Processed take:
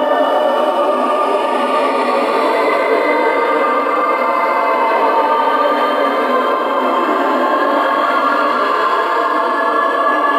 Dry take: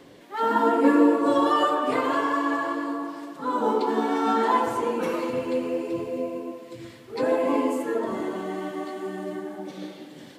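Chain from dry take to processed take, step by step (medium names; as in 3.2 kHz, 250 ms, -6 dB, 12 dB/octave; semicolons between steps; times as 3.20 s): high-pass 460 Hz 12 dB/octave; peaking EQ 7.1 kHz -10.5 dB 0.66 oct; bucket-brigade echo 194 ms, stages 2048, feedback 84%, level -9 dB; Paulstretch 31×, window 0.05 s, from 1.86 s; loudness maximiser +21.5 dB; detune thickener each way 13 cents; trim -1.5 dB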